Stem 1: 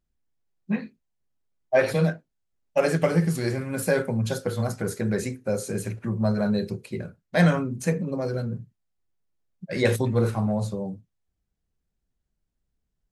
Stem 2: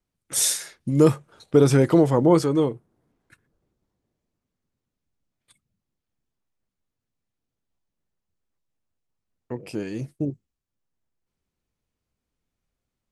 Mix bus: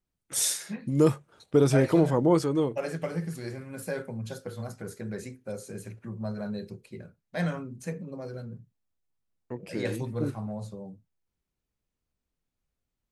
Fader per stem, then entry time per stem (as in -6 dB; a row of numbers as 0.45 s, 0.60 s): -10.5 dB, -5.0 dB; 0.00 s, 0.00 s